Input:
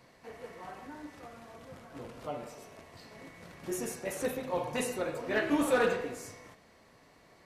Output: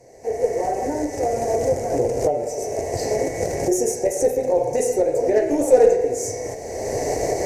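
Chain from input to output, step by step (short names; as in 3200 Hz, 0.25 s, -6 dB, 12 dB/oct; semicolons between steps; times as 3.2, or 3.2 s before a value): recorder AGC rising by 28 dB/s; added harmonics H 4 -22 dB, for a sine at -16 dBFS; EQ curve 120 Hz 0 dB, 180 Hz -11 dB, 290 Hz -3 dB, 420 Hz +8 dB, 790 Hz +2 dB, 1200 Hz -25 dB, 2000 Hz -7 dB, 3400 Hz -23 dB, 6200 Hz +7 dB, 11000 Hz -4 dB; gain +8.5 dB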